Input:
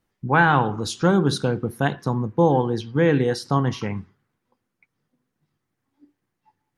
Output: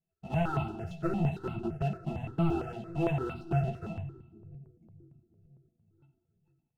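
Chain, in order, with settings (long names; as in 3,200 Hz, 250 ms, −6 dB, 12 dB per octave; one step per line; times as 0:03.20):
each half-wave held at its own peak
mains-hum notches 60/120/180/240/300/360 Hz
in parallel at −0.5 dB: downward compressor, threshold −22 dBFS, peak gain reduction 12.5 dB
on the sum: resonances in every octave E, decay 0.11 s
leveller curve on the samples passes 1
multi-voice chorus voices 6, 0.44 Hz, delay 12 ms, depth 4.5 ms
echo with a time of its own for lows and highs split 380 Hz, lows 492 ms, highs 92 ms, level −15 dB
on a send at −14 dB: convolution reverb, pre-delay 5 ms
on the sum: step-sequenced phaser 8.8 Hz 320–1,700 Hz
level −4 dB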